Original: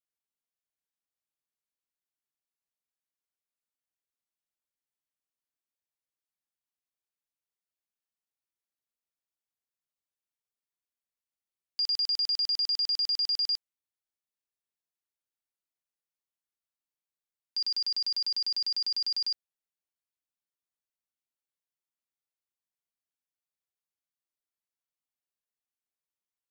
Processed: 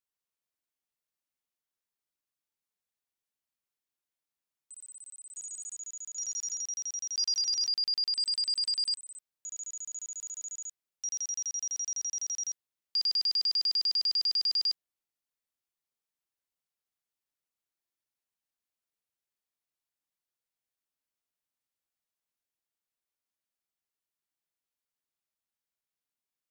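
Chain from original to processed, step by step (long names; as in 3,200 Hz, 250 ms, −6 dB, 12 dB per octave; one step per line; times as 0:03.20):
played backwards from end to start
delay with pitch and tempo change per echo 146 ms, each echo +3 semitones, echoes 3, each echo −6 dB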